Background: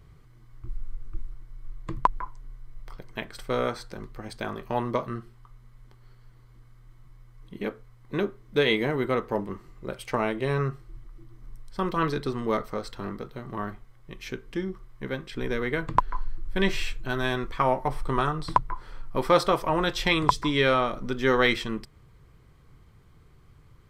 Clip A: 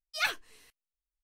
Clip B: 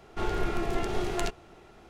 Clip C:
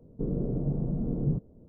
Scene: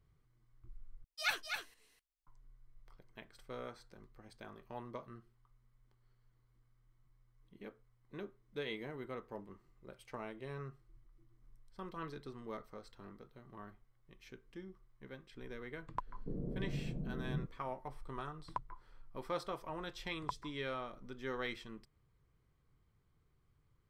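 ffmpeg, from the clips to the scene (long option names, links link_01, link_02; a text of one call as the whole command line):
ffmpeg -i bed.wav -i cue0.wav -i cue1.wav -i cue2.wav -filter_complex "[0:a]volume=-19dB[link_01];[1:a]aecho=1:1:252:0.501[link_02];[link_01]asplit=2[link_03][link_04];[link_03]atrim=end=1.044[link_05];[link_02]atrim=end=1.23,asetpts=PTS-STARTPTS,volume=-5.5dB[link_06];[link_04]atrim=start=2.266[link_07];[3:a]atrim=end=1.68,asetpts=PTS-STARTPTS,volume=-11.5dB,afade=type=in:duration=0.004:curve=hsin,afade=type=out:start_time=1.676:duration=0.004:curve=hsin,adelay=16070[link_08];[link_05][link_06]acrossfade=duration=0.004:curve1=hsin:curve2=hsin[link_09];[link_09][link_07]acrossfade=duration=0.004:curve1=hsin:curve2=hsin[link_10];[link_10][link_08]amix=inputs=2:normalize=0" out.wav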